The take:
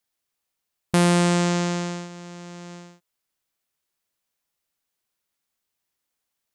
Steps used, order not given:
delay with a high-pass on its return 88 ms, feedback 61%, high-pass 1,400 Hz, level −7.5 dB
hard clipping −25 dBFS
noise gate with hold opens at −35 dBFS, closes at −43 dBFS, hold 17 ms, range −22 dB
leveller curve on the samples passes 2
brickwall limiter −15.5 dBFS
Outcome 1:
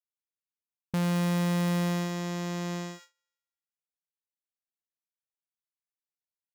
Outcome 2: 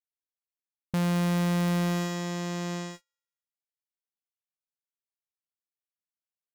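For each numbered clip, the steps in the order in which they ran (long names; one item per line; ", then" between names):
brickwall limiter, then hard clipping, then leveller curve on the samples, then delay with a high-pass on its return, then noise gate with hold
brickwall limiter, then hard clipping, then delay with a high-pass on its return, then noise gate with hold, then leveller curve on the samples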